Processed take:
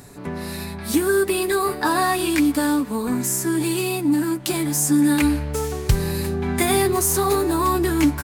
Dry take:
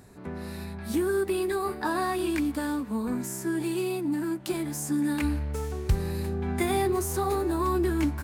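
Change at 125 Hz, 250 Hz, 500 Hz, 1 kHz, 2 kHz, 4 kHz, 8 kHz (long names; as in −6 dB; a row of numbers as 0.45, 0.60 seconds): +6.0, +8.0, +6.5, +8.0, +9.5, +11.5, +13.5 decibels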